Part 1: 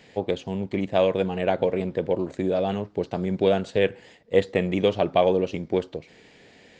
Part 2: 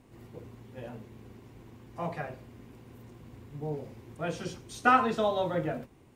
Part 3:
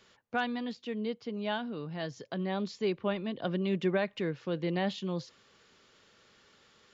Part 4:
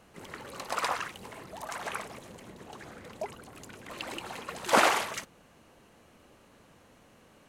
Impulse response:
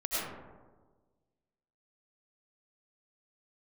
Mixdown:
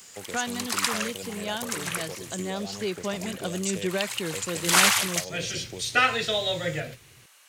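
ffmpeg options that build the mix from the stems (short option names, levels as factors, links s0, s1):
-filter_complex "[0:a]acrossover=split=150|3000[s0][s1][s2];[s1]acompressor=threshold=0.0501:ratio=6[s3];[s0][s3][s2]amix=inputs=3:normalize=0,aexciter=amount=12.9:drive=6.4:freq=5400,volume=0.266[s4];[1:a]equalizer=f=125:t=o:w=1:g=9,equalizer=f=250:t=o:w=1:g=-10,equalizer=f=500:t=o:w=1:g=5,equalizer=f=1000:t=o:w=1:g=-11,equalizer=f=2000:t=o:w=1:g=11,equalizer=f=4000:t=o:w=1:g=9,adelay=1100,volume=0.891[s5];[2:a]volume=1,asplit=2[s6][s7];[3:a]highpass=1300,volume=1.41[s8];[s7]apad=whole_len=320047[s9];[s5][s9]sidechaincompress=threshold=0.00562:ratio=8:attack=16:release=191[s10];[s4][s10][s6][s8]amix=inputs=4:normalize=0,highshelf=f=3400:g=12"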